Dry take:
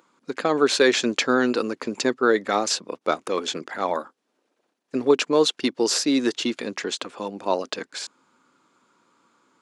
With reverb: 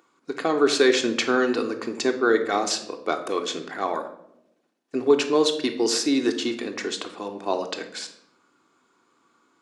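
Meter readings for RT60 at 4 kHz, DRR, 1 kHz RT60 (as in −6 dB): 0.55 s, 4.0 dB, 0.65 s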